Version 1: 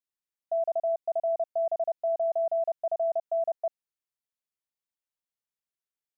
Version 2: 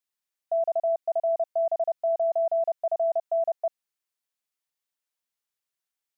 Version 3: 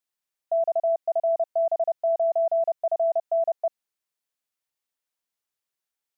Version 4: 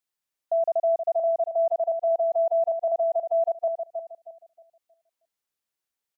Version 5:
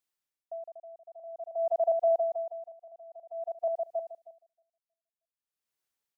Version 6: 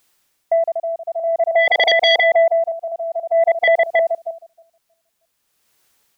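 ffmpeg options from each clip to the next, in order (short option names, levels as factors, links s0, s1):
-af "lowshelf=f=500:g=-8,volume=1.88"
-af "equalizer=f=520:w=0.64:g=2"
-filter_complex "[0:a]asplit=2[s0][s1];[s1]adelay=315,lowpass=f=850:p=1,volume=0.596,asplit=2[s2][s3];[s3]adelay=315,lowpass=f=850:p=1,volume=0.38,asplit=2[s4][s5];[s5]adelay=315,lowpass=f=850:p=1,volume=0.38,asplit=2[s6][s7];[s7]adelay=315,lowpass=f=850:p=1,volume=0.38,asplit=2[s8][s9];[s9]adelay=315,lowpass=f=850:p=1,volume=0.38[s10];[s0][s2][s4][s6][s8][s10]amix=inputs=6:normalize=0"
-af "aeval=exprs='val(0)*pow(10,-26*(0.5-0.5*cos(2*PI*0.51*n/s))/20)':c=same"
-af "aeval=exprs='0.119*sin(PI/2*3.98*val(0)/0.119)':c=same,volume=2.66"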